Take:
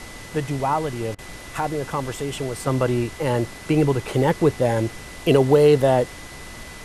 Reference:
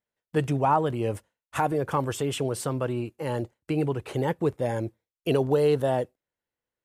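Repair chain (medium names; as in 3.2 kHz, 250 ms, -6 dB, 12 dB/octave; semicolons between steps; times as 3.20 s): band-stop 2 kHz, Q 30; interpolate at 1.15 s, 34 ms; noise print and reduce 30 dB; trim 0 dB, from 2.67 s -7.5 dB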